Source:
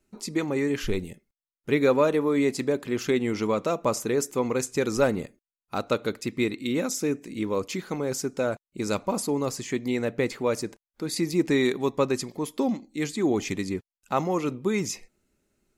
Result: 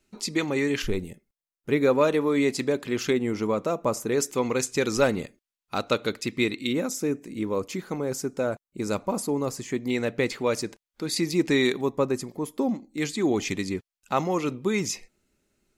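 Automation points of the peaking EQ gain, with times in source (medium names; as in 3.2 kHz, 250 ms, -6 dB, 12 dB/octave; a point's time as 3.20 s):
peaking EQ 3.6 kHz 2.1 oct
+7.5 dB
from 0.82 s -2.5 dB
from 2.01 s +4 dB
from 3.13 s -5 dB
from 4.12 s +5.5 dB
from 6.73 s -4 dB
from 9.90 s +4.5 dB
from 11.81 s -7 dB
from 12.98 s +3.5 dB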